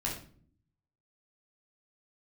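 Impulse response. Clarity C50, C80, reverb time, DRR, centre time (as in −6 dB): 5.5 dB, 10.0 dB, non-exponential decay, −3.5 dB, 32 ms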